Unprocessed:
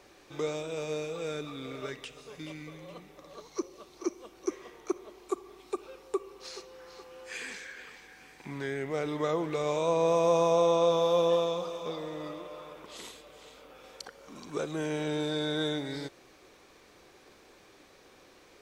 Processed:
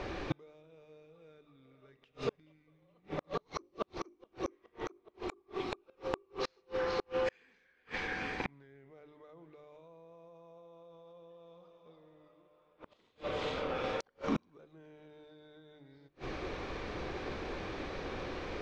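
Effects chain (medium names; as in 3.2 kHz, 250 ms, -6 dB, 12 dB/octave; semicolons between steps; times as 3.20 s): bass shelf 140 Hz +11 dB; hum notches 50/100/150/200/250/300/350/400 Hz; peak limiter -24 dBFS, peak gain reduction 11 dB; inverted gate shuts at -37 dBFS, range -40 dB; distance through air 220 m; trim +17 dB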